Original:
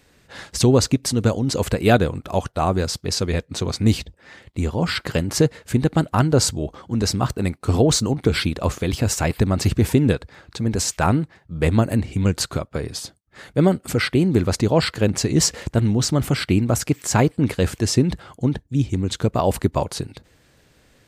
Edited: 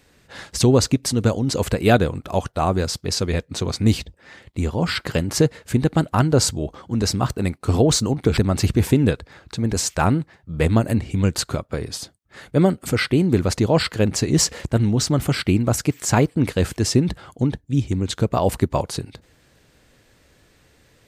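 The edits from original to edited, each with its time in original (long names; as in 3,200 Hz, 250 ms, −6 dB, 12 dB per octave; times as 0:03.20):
0:08.37–0:09.39: remove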